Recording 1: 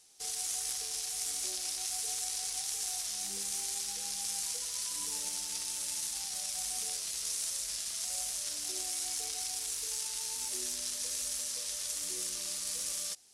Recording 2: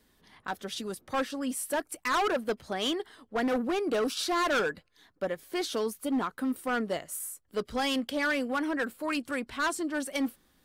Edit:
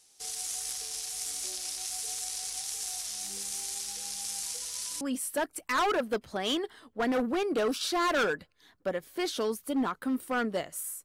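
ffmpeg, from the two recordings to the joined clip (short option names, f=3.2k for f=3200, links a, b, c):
-filter_complex "[0:a]apad=whole_dur=11.04,atrim=end=11.04,atrim=end=5.012[a];[1:a]atrim=start=1.368:end=7.4[b];[a][b]acrossfade=d=0.004:c1=hsin:c2=hsin"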